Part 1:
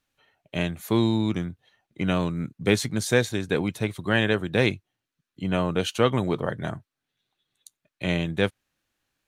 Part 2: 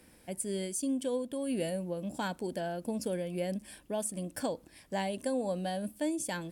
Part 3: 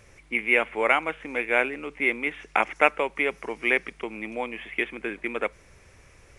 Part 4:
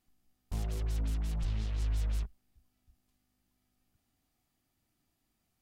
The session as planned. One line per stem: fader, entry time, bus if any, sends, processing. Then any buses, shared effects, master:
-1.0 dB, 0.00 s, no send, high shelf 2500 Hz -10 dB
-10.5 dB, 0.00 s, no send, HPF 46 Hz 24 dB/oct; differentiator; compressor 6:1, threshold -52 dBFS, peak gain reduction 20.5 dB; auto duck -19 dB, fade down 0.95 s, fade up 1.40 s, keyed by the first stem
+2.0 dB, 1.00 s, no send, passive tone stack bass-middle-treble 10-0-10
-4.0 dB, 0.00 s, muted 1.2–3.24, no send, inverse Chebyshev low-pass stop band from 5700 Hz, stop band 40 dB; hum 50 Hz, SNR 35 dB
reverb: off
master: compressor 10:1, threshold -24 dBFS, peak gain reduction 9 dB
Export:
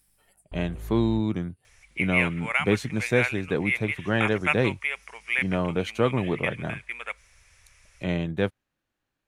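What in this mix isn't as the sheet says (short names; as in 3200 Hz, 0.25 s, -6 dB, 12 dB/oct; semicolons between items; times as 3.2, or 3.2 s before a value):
stem 2 -10.5 dB -> -3.0 dB; stem 3: entry 1.00 s -> 1.65 s; master: missing compressor 10:1, threshold -24 dBFS, peak gain reduction 9 dB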